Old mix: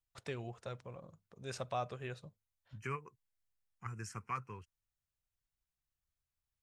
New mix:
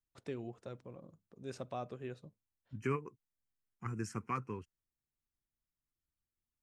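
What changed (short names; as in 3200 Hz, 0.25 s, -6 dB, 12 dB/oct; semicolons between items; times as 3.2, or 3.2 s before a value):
first voice -7.5 dB; master: add bell 280 Hz +13.5 dB 1.5 oct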